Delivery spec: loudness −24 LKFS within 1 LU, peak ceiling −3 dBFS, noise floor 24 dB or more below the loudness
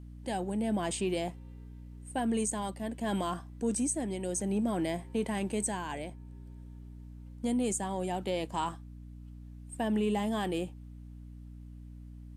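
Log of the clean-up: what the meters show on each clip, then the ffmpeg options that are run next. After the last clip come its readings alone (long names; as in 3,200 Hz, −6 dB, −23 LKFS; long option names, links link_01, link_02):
mains hum 60 Hz; hum harmonics up to 300 Hz; level of the hum −44 dBFS; integrated loudness −33.0 LKFS; sample peak −21.0 dBFS; target loudness −24.0 LKFS
→ -af "bandreject=frequency=60:width_type=h:width=4,bandreject=frequency=120:width_type=h:width=4,bandreject=frequency=180:width_type=h:width=4,bandreject=frequency=240:width_type=h:width=4,bandreject=frequency=300:width_type=h:width=4"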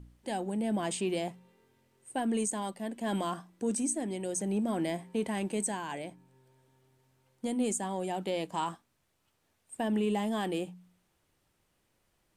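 mains hum none found; integrated loudness −33.5 LKFS; sample peak −20.5 dBFS; target loudness −24.0 LKFS
→ -af "volume=9.5dB"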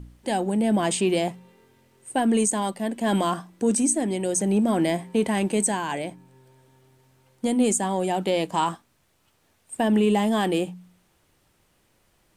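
integrated loudness −24.0 LKFS; sample peak −11.0 dBFS; background noise floor −66 dBFS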